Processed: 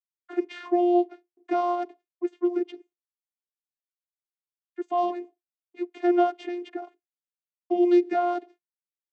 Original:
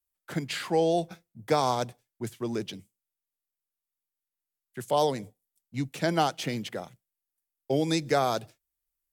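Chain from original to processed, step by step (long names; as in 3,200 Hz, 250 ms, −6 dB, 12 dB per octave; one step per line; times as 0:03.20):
noise gate with hold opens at −46 dBFS
channel vocoder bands 16, saw 352 Hz
bass and treble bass +4 dB, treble −13 dB
level +3.5 dB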